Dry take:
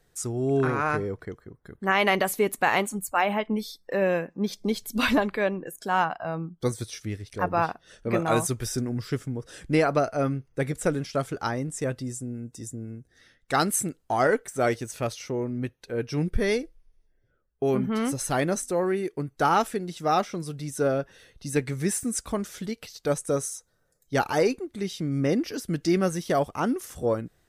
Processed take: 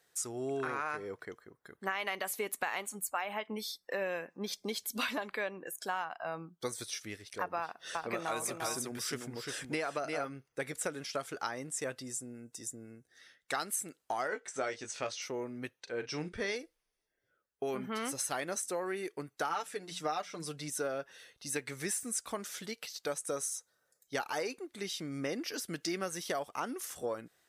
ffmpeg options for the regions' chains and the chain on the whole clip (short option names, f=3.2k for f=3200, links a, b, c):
-filter_complex "[0:a]asettb=1/sr,asplit=3[a][b][c];[a]atrim=end=7.604[d];[b]atrim=start=7.6:end=10.3,asetpts=PTS-STARTPTS,afade=t=in:d=0.004:c=qsin,afade=t=out:st=2.696:d=0.004:c=qsin,acompressor=mode=upward:threshold=-31dB:ratio=2.5:attack=3.2:release=140:knee=2.83:detection=peak,aecho=1:1:349:0.531,atrim=end_sample=119070[e];[c]atrim=start=10.296[f];[d][e]acrossfade=d=0.004:c1=hsin:c2=qsin[g];[g][f]acrossfade=d=0.004:c1=qsin:c2=hsin,asettb=1/sr,asplit=3[h][i][j];[h]atrim=end=14.284[k];[i]atrim=start=14.28:end=15.22,asetpts=PTS-STARTPTS,afade=t=in:d=0.004:c=qsin,afade=t=out:st=0.936:d=0.004:c=qsin,lowpass=f=7.2k:w=0.5412,lowpass=f=7.2k:w=1.3066,asplit=2[l][m];[m]adelay=19,volume=-7dB[n];[l][n]amix=inputs=2:normalize=0,atrim=end_sample=41454[o];[j]atrim=start=15.216[p];[k][o]acrossfade=d=0.004:c1=hsin:c2=qsin[q];[q][p]acrossfade=d=0.004:c1=qsin:c2=hsin,asettb=1/sr,asplit=3[r][s][t];[r]atrim=end=15.804[u];[s]atrim=start=15.8:end=16.56,asetpts=PTS-STARTPTS,afade=t=in:d=0.004:c=qsin,afade=t=out:st=0.756:d=0.004:c=qsin,lowpass=f=7.9k:w=0.5412,lowpass=f=7.9k:w=1.3066,asplit=2[v][w];[w]adelay=40,volume=-12.5dB[x];[v][x]amix=inputs=2:normalize=0,atrim=end_sample=33516[y];[t]atrim=start=16.556[z];[u][y]acrossfade=d=0.004:c1=hsin:c2=qsin[aa];[aa][z]acrossfade=d=0.004:c1=qsin:c2=hsin,asettb=1/sr,asplit=3[ab][ac][ad];[ab]atrim=end=19.494[ae];[ac]atrim=start=19.49:end=20.7,asetpts=PTS-STARTPTS,afade=t=in:d=0.004:c=qsin,afade=t=out:st=1.206:d=0.004:c=qsin,lowpass=11k,bandreject=f=60:t=h:w=6,bandreject=f=120:t=h:w=6,bandreject=f=180:t=h:w=6,aecho=1:1:6.7:0.62,atrim=end_sample=53361[af];[ad]atrim=start=20.696[ag];[ae][af]acrossfade=d=0.004:c1=hsin:c2=qsin[ah];[ah][ag]acrossfade=d=0.004:c1=qsin:c2=hsin,highpass=f=940:p=1,acompressor=threshold=-32dB:ratio=6"